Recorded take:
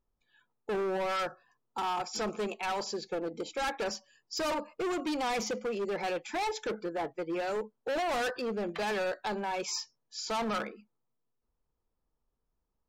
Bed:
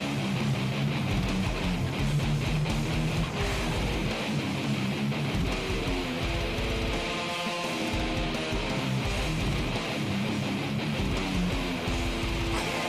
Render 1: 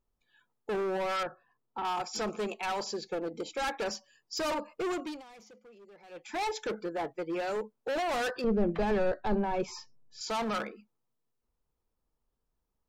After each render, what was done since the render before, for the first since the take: 1.23–1.85 s: distance through air 360 m; 4.92–6.41 s: dip -21.5 dB, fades 0.32 s; 8.44–10.21 s: tilt EQ -4 dB/octave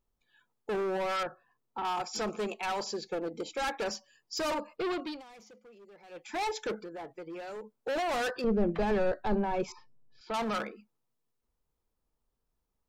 4.76–5.20 s: resonant high shelf 5.4 kHz -6.5 dB, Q 3; 6.79–7.74 s: compression 4:1, threshold -41 dBFS; 9.72–10.34 s: distance through air 410 m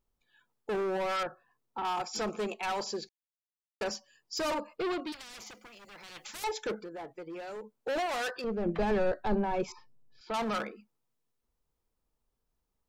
3.09–3.81 s: mute; 5.12–6.44 s: spectrum-flattening compressor 10:1; 8.06–8.66 s: bass shelf 460 Hz -9 dB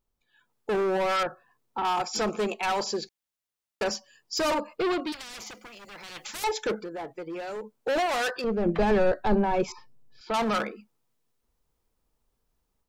level rider gain up to 6 dB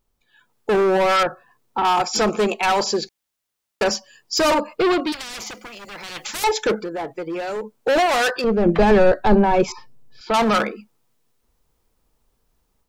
trim +8.5 dB

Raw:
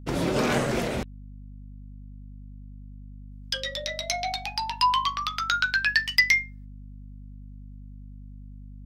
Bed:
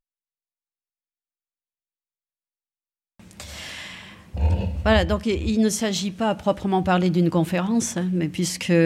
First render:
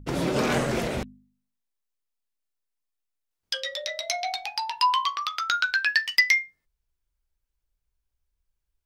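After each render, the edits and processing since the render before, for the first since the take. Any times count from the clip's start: de-hum 50 Hz, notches 5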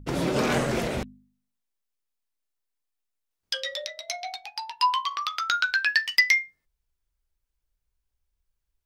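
3.86–5.11 s: upward expansion, over -42 dBFS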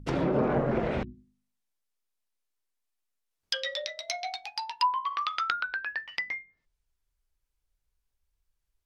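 hum notches 60/120/180/240/300/360 Hz; low-pass that closes with the level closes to 960 Hz, closed at -21.5 dBFS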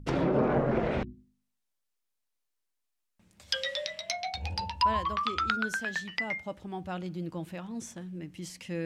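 add bed -17 dB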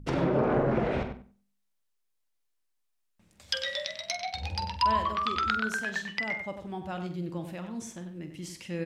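doubling 46 ms -10.5 dB; filtered feedback delay 95 ms, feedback 19%, low-pass 3.3 kHz, level -8 dB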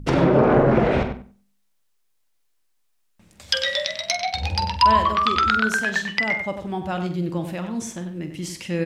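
trim +9.5 dB; peak limiter -3 dBFS, peak gain reduction 2 dB

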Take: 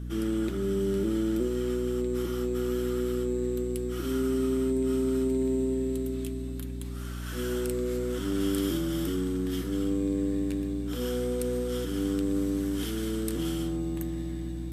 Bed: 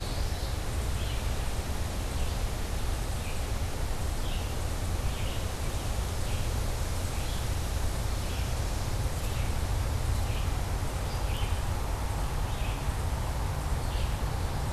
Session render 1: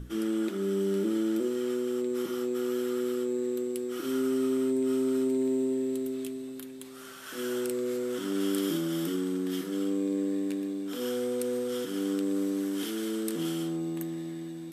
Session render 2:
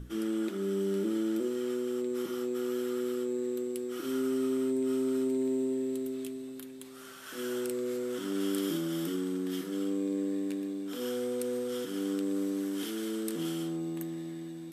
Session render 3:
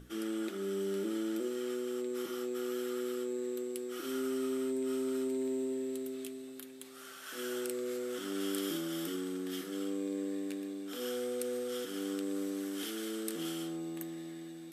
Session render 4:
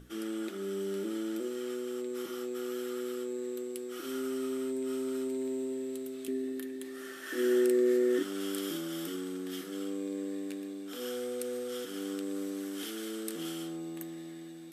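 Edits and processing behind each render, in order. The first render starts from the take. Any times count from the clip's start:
hum notches 60/120/180/240/300/360 Hz
trim -2.5 dB
bass shelf 250 Hz -12 dB; band-stop 990 Hz, Q 9.1
6.28–8.23 s: small resonant body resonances 320/1800 Hz, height 17 dB, ringing for 30 ms

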